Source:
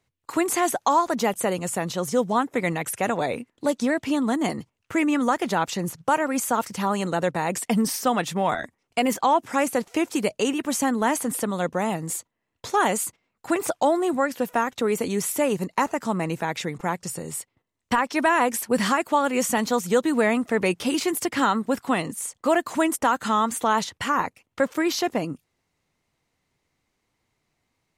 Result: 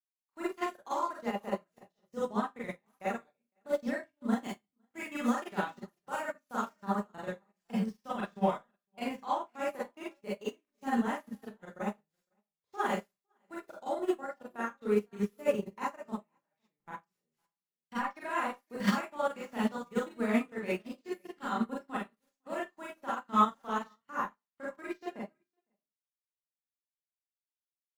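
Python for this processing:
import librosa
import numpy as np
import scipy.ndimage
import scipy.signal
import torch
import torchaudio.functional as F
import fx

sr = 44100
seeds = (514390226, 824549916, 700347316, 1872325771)

y = scipy.ndimage.median_filter(x, 5, mode='constant')
y = fx.high_shelf(y, sr, hz=2400.0, db=6.5, at=(4.39, 6.79))
y = y + 0.32 * np.pad(y, (int(5.0 * sr / 1000.0), 0))[:len(y)]
y = fx.dynamic_eq(y, sr, hz=1400.0, q=5.7, threshold_db=-40.0, ratio=4.0, max_db=4)
y = fx.level_steps(y, sr, step_db=23)
y = y + 10.0 ** (-17.0 / 20.0) * np.pad(y, (int(508 * sr / 1000.0), 0))[:len(y)]
y = fx.rev_schroeder(y, sr, rt60_s=0.34, comb_ms=30, drr_db=-5.5)
y = fx.upward_expand(y, sr, threshold_db=-39.0, expansion=2.5)
y = F.gain(torch.from_numpy(y), -7.5).numpy()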